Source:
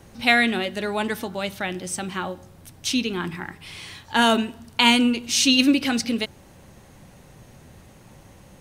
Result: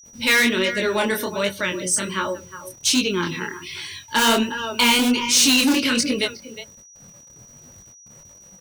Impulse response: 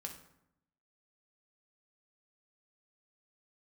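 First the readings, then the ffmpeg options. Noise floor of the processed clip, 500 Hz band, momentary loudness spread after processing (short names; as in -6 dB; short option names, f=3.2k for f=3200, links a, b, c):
-48 dBFS, +3.5 dB, 16 LU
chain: -filter_complex "[0:a]asplit=2[a][b];[b]adelay=360,highpass=300,lowpass=3.4k,asoftclip=type=hard:threshold=-12.5dB,volume=-12dB[c];[a][c]amix=inputs=2:normalize=0,adynamicequalizer=threshold=0.0224:dfrequency=5200:dqfactor=0.81:tfrequency=5200:tqfactor=0.81:attack=5:release=100:ratio=0.375:range=1.5:mode=cutabove:tftype=bell,asuperstop=centerf=750:order=8:qfactor=4.1,asplit=2[d][e];[e]aeval=exprs='(mod(5.01*val(0)+1,2)-1)/5.01':c=same,volume=-9dB[f];[d][f]amix=inputs=2:normalize=0,bass=f=250:g=-6,treble=f=4k:g=6,acontrast=61,afftdn=nr=20:nf=-31,acrusher=bits=7:mix=0:aa=0.000001,agate=range=-53dB:threshold=-50dB:ratio=16:detection=peak,flanger=delay=19.5:depth=7.7:speed=1.3,aeval=exprs='val(0)+0.00562*sin(2*PI*5800*n/s)':c=same,acontrast=77,volume=-7dB"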